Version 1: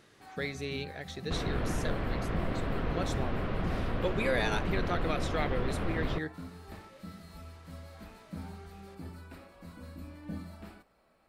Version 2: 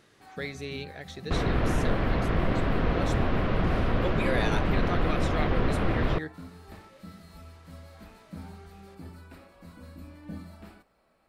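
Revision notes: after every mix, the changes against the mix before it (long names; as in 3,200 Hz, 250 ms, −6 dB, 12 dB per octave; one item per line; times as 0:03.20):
second sound +7.0 dB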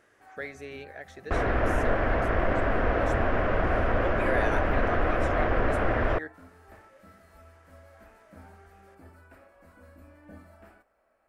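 speech −4.0 dB
first sound −6.0 dB
master: add graphic EQ with 15 bands 160 Hz −11 dB, 630 Hz +7 dB, 1,600 Hz +7 dB, 4,000 Hz −10 dB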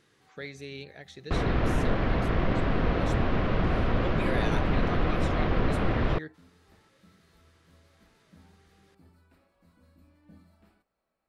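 first sound −8.5 dB
master: add graphic EQ with 15 bands 160 Hz +11 dB, 630 Hz −7 dB, 1,600 Hz −7 dB, 4,000 Hz +10 dB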